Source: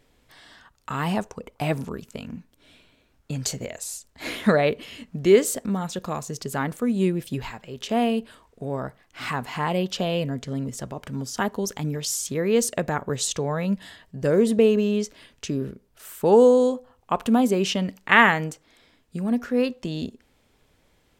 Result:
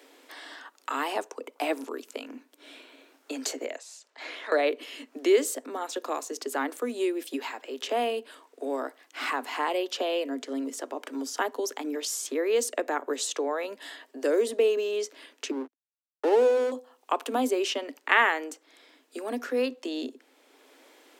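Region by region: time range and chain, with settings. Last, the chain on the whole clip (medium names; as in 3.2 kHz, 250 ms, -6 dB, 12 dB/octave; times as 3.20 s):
3.76–4.52 s: three-band isolator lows -17 dB, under 440 Hz, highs -20 dB, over 6.8 kHz + compression 2:1, threshold -48 dBFS
15.51–16.72 s: treble shelf 2.3 kHz -10.5 dB + hum notches 50/100/150/200/250 Hz + hysteresis with a dead band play -21.5 dBFS
whole clip: steep high-pass 260 Hz 96 dB/octave; three bands compressed up and down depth 40%; trim -2 dB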